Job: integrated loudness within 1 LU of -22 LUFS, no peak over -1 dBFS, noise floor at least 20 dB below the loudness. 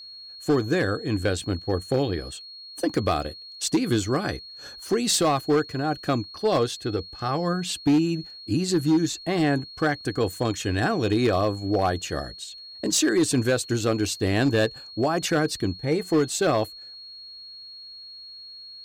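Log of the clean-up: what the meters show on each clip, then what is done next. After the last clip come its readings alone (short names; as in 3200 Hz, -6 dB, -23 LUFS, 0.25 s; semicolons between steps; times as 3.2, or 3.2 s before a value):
clipped 1.1%; flat tops at -15.0 dBFS; steady tone 4300 Hz; tone level -40 dBFS; loudness -24.5 LUFS; peak -15.0 dBFS; loudness target -22.0 LUFS
-> clip repair -15 dBFS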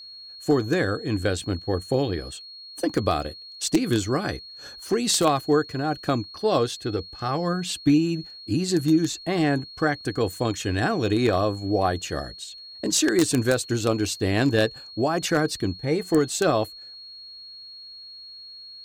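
clipped 0.0%; steady tone 4300 Hz; tone level -40 dBFS
-> notch 4300 Hz, Q 30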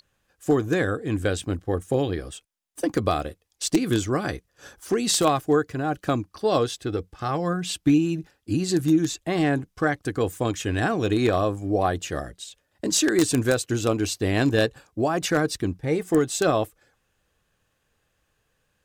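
steady tone none; loudness -24.5 LUFS; peak -6.0 dBFS; loudness target -22.0 LUFS
-> gain +2.5 dB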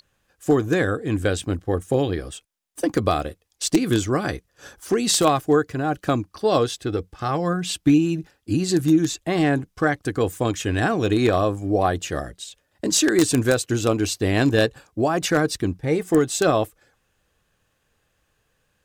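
loudness -22.0 LUFS; peak -3.5 dBFS; noise floor -70 dBFS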